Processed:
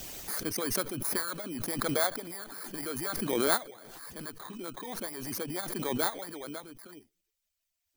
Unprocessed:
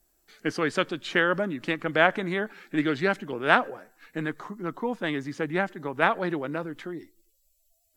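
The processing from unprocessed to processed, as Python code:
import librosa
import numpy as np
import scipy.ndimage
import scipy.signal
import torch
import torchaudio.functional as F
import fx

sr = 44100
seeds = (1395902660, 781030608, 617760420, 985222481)

y = fx.bit_reversed(x, sr, seeds[0], block=16)
y = fx.hpss(y, sr, part='harmonic', gain_db=-18)
y = fx.pre_swell(y, sr, db_per_s=26.0)
y = y * librosa.db_to_amplitude(-7.0)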